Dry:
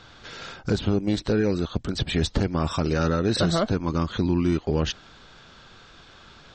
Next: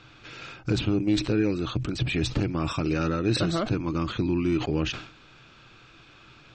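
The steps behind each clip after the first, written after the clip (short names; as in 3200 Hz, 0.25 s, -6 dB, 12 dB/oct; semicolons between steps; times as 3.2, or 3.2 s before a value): thirty-one-band EQ 125 Hz +12 dB, 315 Hz +10 dB, 1250 Hz +4 dB, 2500 Hz +12 dB; sustainer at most 100 dB/s; gain -6.5 dB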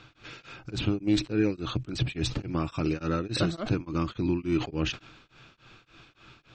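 beating tremolo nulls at 3.5 Hz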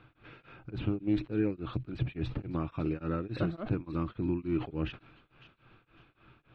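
air absorption 490 m; thin delay 0.555 s, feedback 33%, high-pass 2700 Hz, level -12 dB; gain -3.5 dB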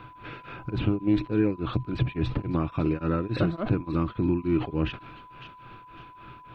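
in parallel at +3 dB: compressor, threshold -39 dBFS, peak gain reduction 15 dB; on the sum: whine 1000 Hz -50 dBFS; gain +3.5 dB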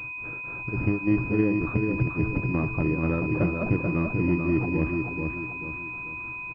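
feedback echo 0.436 s, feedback 40%, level -4.5 dB; pulse-width modulation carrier 2500 Hz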